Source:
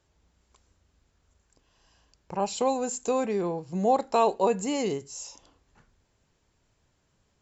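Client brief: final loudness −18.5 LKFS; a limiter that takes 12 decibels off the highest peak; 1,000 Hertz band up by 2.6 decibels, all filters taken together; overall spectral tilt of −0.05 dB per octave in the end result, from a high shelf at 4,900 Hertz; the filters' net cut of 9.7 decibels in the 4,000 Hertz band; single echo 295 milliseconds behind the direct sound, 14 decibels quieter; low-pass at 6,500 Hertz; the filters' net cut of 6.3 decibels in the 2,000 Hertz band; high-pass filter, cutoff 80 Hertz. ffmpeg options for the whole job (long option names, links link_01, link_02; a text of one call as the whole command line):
ffmpeg -i in.wav -af "highpass=80,lowpass=6500,equalizer=frequency=1000:width_type=o:gain=5,equalizer=frequency=2000:width_type=o:gain=-6,equalizer=frequency=4000:width_type=o:gain=-6.5,highshelf=frequency=4900:gain=-8,alimiter=limit=-21dB:level=0:latency=1,aecho=1:1:295:0.2,volume=13dB" out.wav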